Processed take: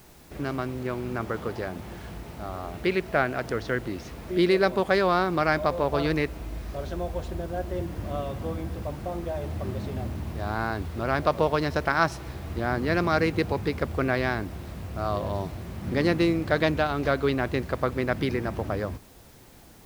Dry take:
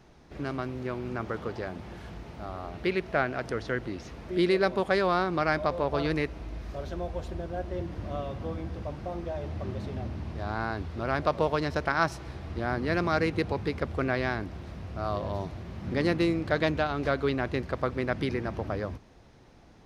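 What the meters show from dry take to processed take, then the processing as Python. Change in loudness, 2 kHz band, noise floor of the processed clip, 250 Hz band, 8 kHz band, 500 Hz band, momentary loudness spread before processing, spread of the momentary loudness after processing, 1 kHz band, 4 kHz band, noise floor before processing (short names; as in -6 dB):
+3.0 dB, +3.0 dB, -50 dBFS, +3.0 dB, n/a, +3.0 dB, 12 LU, 12 LU, +3.0 dB, +3.0 dB, -54 dBFS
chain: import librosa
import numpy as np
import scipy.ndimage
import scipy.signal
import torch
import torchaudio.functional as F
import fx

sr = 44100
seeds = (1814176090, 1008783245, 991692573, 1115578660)

y = fx.quant_dither(x, sr, seeds[0], bits=10, dither='triangular')
y = y * 10.0 ** (3.0 / 20.0)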